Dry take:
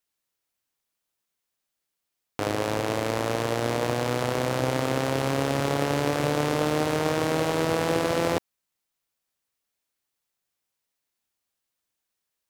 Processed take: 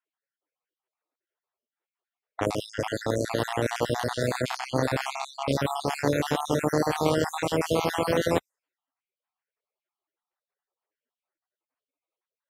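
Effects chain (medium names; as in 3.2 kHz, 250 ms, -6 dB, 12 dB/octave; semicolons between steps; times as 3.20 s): random holes in the spectrogram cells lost 55%; level-controlled noise filter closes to 1.6 kHz, open at -25.5 dBFS; trim +2.5 dB; Vorbis 48 kbps 48 kHz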